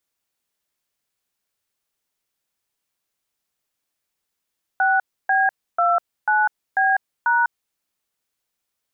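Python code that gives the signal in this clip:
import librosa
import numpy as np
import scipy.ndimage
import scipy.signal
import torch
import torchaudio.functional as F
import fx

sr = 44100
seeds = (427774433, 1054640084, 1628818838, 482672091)

y = fx.dtmf(sr, digits='6B29B#', tone_ms=199, gap_ms=293, level_db=-17.5)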